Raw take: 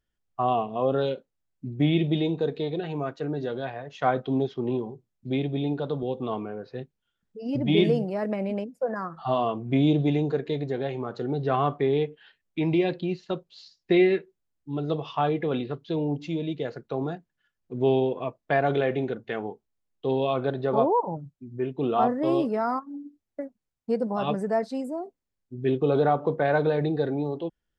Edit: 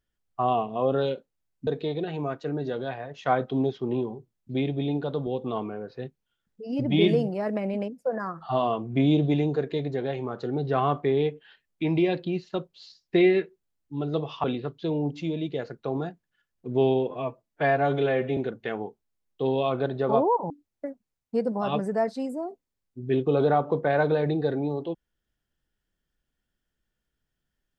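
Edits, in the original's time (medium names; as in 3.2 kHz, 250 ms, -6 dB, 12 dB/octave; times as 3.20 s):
1.67–2.43 s: delete
15.20–15.50 s: delete
18.17–19.01 s: stretch 1.5×
21.14–23.05 s: delete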